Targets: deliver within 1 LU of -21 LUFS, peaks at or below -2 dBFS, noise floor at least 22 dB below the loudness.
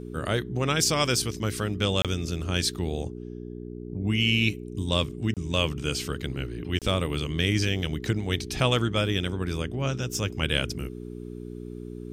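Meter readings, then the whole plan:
dropouts 3; longest dropout 27 ms; hum 60 Hz; highest harmonic 420 Hz; hum level -35 dBFS; loudness -27.0 LUFS; peak level -8.5 dBFS; loudness target -21.0 LUFS
-> interpolate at 2.02/5.34/6.79 s, 27 ms; de-hum 60 Hz, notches 7; trim +6 dB

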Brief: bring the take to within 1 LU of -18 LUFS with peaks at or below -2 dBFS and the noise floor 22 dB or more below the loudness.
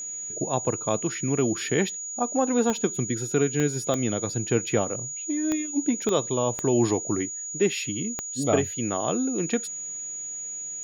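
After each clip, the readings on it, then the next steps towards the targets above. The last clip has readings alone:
clicks found 7; steady tone 6.8 kHz; tone level -32 dBFS; loudness -26.0 LUFS; peak level -8.5 dBFS; loudness target -18.0 LUFS
-> de-click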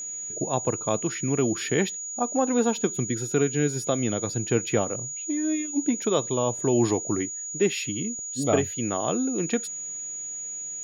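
clicks found 0; steady tone 6.8 kHz; tone level -32 dBFS
-> band-stop 6.8 kHz, Q 30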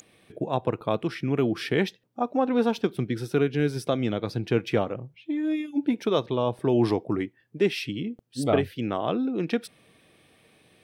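steady tone not found; loudness -27.0 LUFS; peak level -9.0 dBFS; loudness target -18.0 LUFS
-> trim +9 dB; peak limiter -2 dBFS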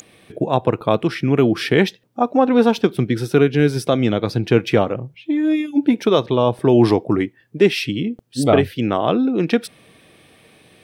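loudness -18.0 LUFS; peak level -2.0 dBFS; noise floor -55 dBFS

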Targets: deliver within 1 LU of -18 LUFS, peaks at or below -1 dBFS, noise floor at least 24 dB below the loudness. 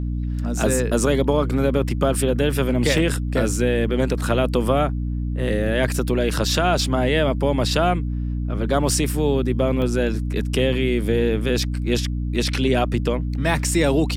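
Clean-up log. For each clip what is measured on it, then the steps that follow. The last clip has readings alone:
dropouts 2; longest dropout 1.5 ms; hum 60 Hz; highest harmonic 300 Hz; hum level -22 dBFS; loudness -21.0 LUFS; peak level -6.0 dBFS; loudness target -18.0 LUFS
-> interpolate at 2.98/9.82 s, 1.5 ms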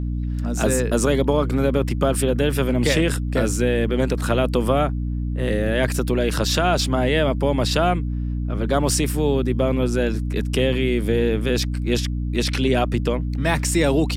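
dropouts 0; hum 60 Hz; highest harmonic 300 Hz; hum level -22 dBFS
-> hum notches 60/120/180/240/300 Hz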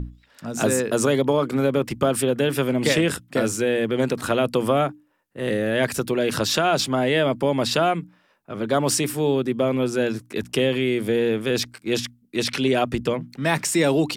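hum not found; loudness -22.5 LUFS; peak level -7.5 dBFS; loudness target -18.0 LUFS
-> trim +4.5 dB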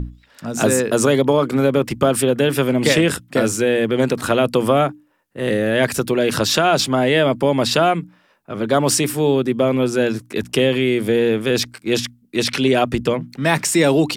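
loudness -18.0 LUFS; peak level -3.0 dBFS; noise floor -56 dBFS

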